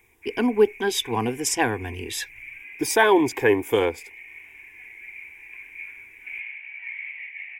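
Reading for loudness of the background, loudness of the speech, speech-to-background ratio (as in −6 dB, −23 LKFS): −38.5 LKFS, −23.0 LKFS, 15.5 dB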